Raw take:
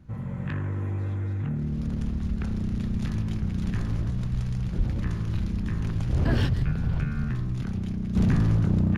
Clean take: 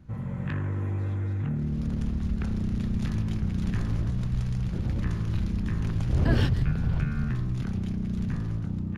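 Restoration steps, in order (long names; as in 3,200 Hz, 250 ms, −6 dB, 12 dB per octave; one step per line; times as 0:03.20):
clipped peaks rebuilt −16 dBFS
0:04.77–0:04.89: high-pass filter 140 Hz 24 dB per octave
0:08.15: level correction −9.5 dB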